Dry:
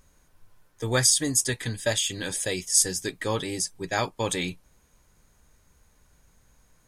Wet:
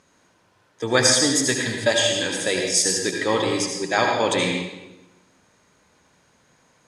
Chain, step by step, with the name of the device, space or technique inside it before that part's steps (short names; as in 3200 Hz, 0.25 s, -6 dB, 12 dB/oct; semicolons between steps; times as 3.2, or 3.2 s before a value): supermarket ceiling speaker (BPF 200–5800 Hz; reverb RT60 1.0 s, pre-delay 66 ms, DRR 1.5 dB); gain +6 dB